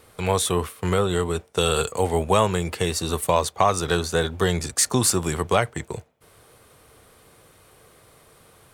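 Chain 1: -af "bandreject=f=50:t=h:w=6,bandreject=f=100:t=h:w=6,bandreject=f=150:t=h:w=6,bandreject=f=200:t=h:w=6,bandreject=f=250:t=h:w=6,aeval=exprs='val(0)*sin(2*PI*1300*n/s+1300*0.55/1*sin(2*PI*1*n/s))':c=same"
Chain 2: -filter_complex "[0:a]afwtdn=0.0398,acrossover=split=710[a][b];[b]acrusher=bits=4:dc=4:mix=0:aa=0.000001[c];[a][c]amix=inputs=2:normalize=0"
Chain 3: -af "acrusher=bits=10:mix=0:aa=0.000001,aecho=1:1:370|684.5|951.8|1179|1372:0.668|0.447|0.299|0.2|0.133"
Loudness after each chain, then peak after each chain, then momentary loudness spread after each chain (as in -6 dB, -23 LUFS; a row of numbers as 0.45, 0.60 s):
-25.0, -24.0, -20.5 LUFS; -4.0, -5.0, -3.5 dBFS; 5, 8, 9 LU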